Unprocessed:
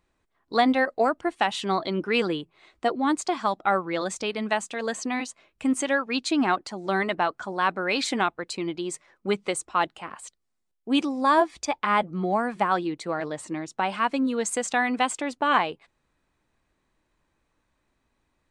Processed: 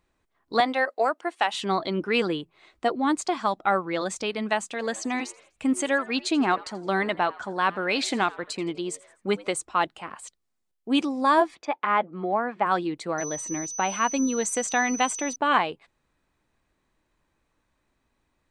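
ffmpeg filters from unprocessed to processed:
ffmpeg -i in.wav -filter_complex "[0:a]asettb=1/sr,asplit=3[link_01][link_02][link_03];[link_01]atrim=end=0.604[link_04];[link_02]atrim=start=0.6:end=1.54,asetpts=PTS-STARTPTS,afade=type=in:duration=0.004:curve=qsin,afade=type=out:start_time=0.936:duration=0.004:curve=qsin,highpass=440[link_05];[link_03]atrim=start=1.536[link_06];[link_04][link_05]acrossfade=duration=0.004:curve1=hsin:curve2=qsin[link_07];[link_07][link_06]acrossfade=duration=0.004:curve1=qsin:curve2=hsin,asettb=1/sr,asplit=3[link_08][link_09][link_10];[link_08]atrim=end=4.714[link_11];[link_09]atrim=start=4.71:end=9.49,asetpts=PTS-STARTPTS,afade=type=in:duration=0.004:curve=qsin,afade=type=out:start_time=4.776:duration=0.004:curve=qsin,asplit=4[link_12][link_13][link_14][link_15];[link_13]adelay=83,afreqshift=100,volume=-21dB[link_16];[link_14]adelay=166,afreqshift=200,volume=-27.6dB[link_17];[link_15]adelay=249,afreqshift=300,volume=-34.1dB[link_18];[link_12][link_16][link_17][link_18]amix=inputs=4:normalize=0,atrim=end_sample=210798[link_19];[link_10]atrim=start=9.486[link_20];[link_11][link_19]acrossfade=duration=0.004:curve1=hsin:curve2=qsin[link_21];[link_21][link_20]acrossfade=duration=0.004:curve1=qsin:curve2=hsin,asplit=3[link_22][link_23][link_24];[link_22]afade=type=out:start_time=11.54:duration=0.02[link_25];[link_23]highpass=270,lowpass=2500,afade=type=in:start_time=11.54:duration=0.02,afade=type=out:start_time=12.65:duration=0.02[link_26];[link_24]afade=type=in:start_time=12.65:duration=0.02[link_27];[link_25][link_26][link_27]amix=inputs=3:normalize=0,asettb=1/sr,asplit=3[link_28][link_29][link_30];[link_28]atrim=end=13.184[link_31];[link_29]atrim=start=13.18:end=15.36,asetpts=PTS-STARTPTS,afade=type=in:duration=0.004:curve=qsin,afade=type=out:start_time=2.176:duration=0.004:curve=qsin,aeval=exprs='val(0)+0.0224*sin(2*PI*6000*n/s)':channel_layout=same[link_32];[link_30]atrim=start=15.356[link_33];[link_31][link_32]acrossfade=duration=0.004:curve1=hsin:curve2=qsin[link_34];[link_34][link_33]acrossfade=duration=0.004:curve1=qsin:curve2=hsin" out.wav

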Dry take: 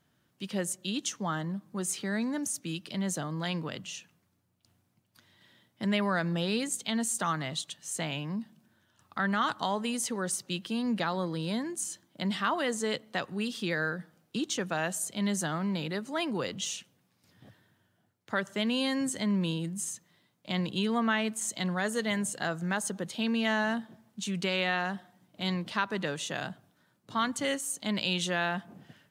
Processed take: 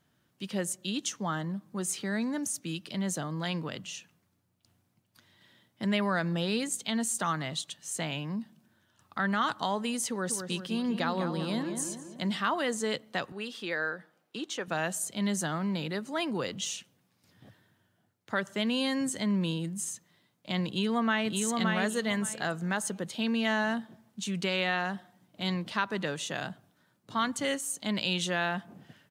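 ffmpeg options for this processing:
ffmpeg -i in.wav -filter_complex "[0:a]asettb=1/sr,asplit=3[link_01][link_02][link_03];[link_01]atrim=end=10.084[link_04];[link_02]atrim=start=10.08:end=12.38,asetpts=PTS-STARTPTS,afade=type=in:duration=0.004:curve=qsin,afade=type=out:start_time=2.296:duration=0.004:curve=qsin,asplit=2[link_05][link_06];[link_06]adelay=194,lowpass=frequency=2000:poles=1,volume=-6.5dB,asplit=2[link_07][link_08];[link_08]adelay=194,lowpass=frequency=2000:poles=1,volume=0.52,asplit=2[link_09][link_10];[link_10]adelay=194,lowpass=frequency=2000:poles=1,volume=0.52,asplit=2[link_11][link_12];[link_12]adelay=194,lowpass=frequency=2000:poles=1,volume=0.52,asplit=2[link_13][link_14];[link_14]adelay=194,lowpass=frequency=2000:poles=1,volume=0.52,asplit=2[link_15][link_16];[link_16]adelay=194,lowpass=frequency=2000:poles=1,volume=0.52[link_17];[link_05][link_07][link_09][link_11][link_13][link_15][link_17]amix=inputs=7:normalize=0,atrim=end_sample=101430[link_18];[link_03]atrim=start=12.376[link_19];[link_04][link_18]acrossfade=duration=0.004:curve1=hsin:curve2=qsin[link_20];[link_20][link_19]acrossfade=duration=0.004:curve1=qsin:curve2=hsin,asettb=1/sr,asplit=3[link_21][link_22][link_23];[link_21]atrim=end=13.324[link_24];[link_22]atrim=start=13.32:end=14.68,asetpts=PTS-STARTPTS,afade=type=in:duration=0.004:curve=qsin,afade=type=out:start_time=1.356:duration=0.004:curve=qsin,bass=frequency=250:gain=-15,treble=frequency=4000:gain=-7[link_25];[link_23]atrim=start=14.676[link_26];[link_24][link_25]acrossfade=duration=0.004:curve1=hsin:curve2=qsin[link_27];[link_27][link_26]acrossfade=duration=0.004:curve1=qsin:curve2=hsin,asplit=2[link_28][link_29];[link_29]afade=type=in:start_time=20.68:duration=0.01,afade=type=out:start_time=21.37:duration=0.01,aecho=0:1:570|1140|1710:0.707946|0.141589|0.0283178[link_30];[link_28][link_30]amix=inputs=2:normalize=0" out.wav

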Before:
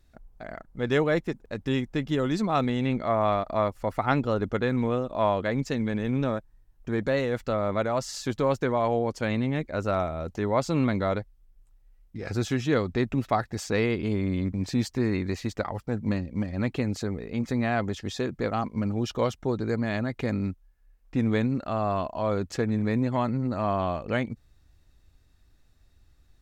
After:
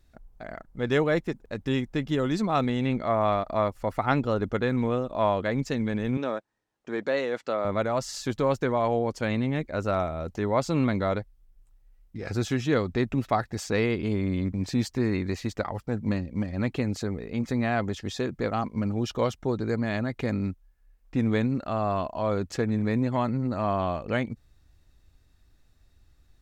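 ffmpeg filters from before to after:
ffmpeg -i in.wav -filter_complex "[0:a]asettb=1/sr,asplit=3[link_01][link_02][link_03];[link_01]atrim=end=6.174[link_04];[link_02]atrim=start=6.17:end=7.65,asetpts=PTS-STARTPTS,afade=type=in:duration=0.004:curve=qsin,afade=type=out:start_time=1.476:duration=0.004:curve=qsin,highpass=310,lowpass=7400[link_05];[link_03]atrim=start=7.646[link_06];[link_04][link_05]acrossfade=duration=0.004:curve1=hsin:curve2=qsin[link_07];[link_07][link_06]acrossfade=duration=0.004:curve1=qsin:curve2=hsin" out.wav

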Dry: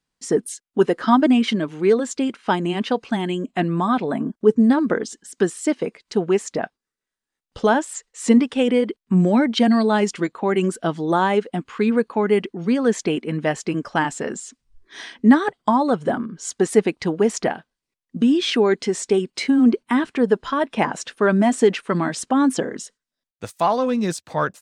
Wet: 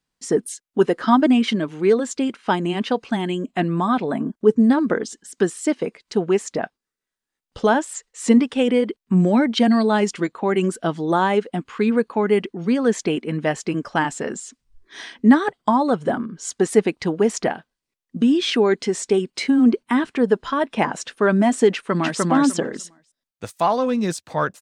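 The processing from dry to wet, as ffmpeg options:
ffmpeg -i in.wav -filter_complex "[0:a]asplit=2[link_01][link_02];[link_02]afade=type=in:start_time=21.72:duration=0.01,afade=type=out:start_time=22.21:duration=0.01,aecho=0:1:300|600|900:0.944061|0.141609|0.0212414[link_03];[link_01][link_03]amix=inputs=2:normalize=0" out.wav

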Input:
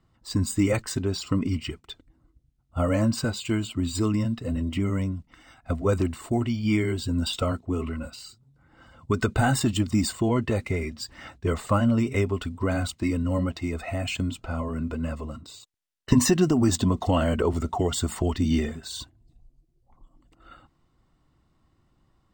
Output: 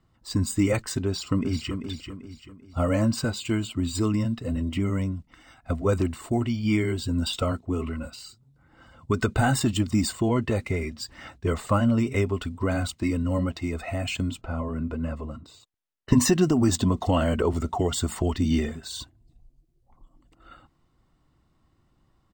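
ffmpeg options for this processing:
ffmpeg -i in.wav -filter_complex "[0:a]asplit=2[link_01][link_02];[link_02]afade=type=in:start_time=1.05:duration=0.01,afade=type=out:start_time=1.78:duration=0.01,aecho=0:1:390|780|1170|1560|1950:0.421697|0.168679|0.0674714|0.0269886|0.0107954[link_03];[link_01][link_03]amix=inputs=2:normalize=0,asettb=1/sr,asplit=3[link_04][link_05][link_06];[link_04]atrim=end=14.414[link_07];[link_05]atrim=start=14.41:end=16.13,asetpts=PTS-STARTPTS,afade=type=in:duration=0.004:curve=qsin,afade=type=out:start_time=1.716:duration=0.004:curve=qsin,highshelf=frequency=3200:gain=-10[link_08];[link_06]atrim=start=16.126[link_09];[link_07][link_08]acrossfade=duration=0.004:curve1=hsin:curve2=qsin[link_10];[link_10][link_09]acrossfade=duration=0.004:curve1=qsin:curve2=hsin" out.wav

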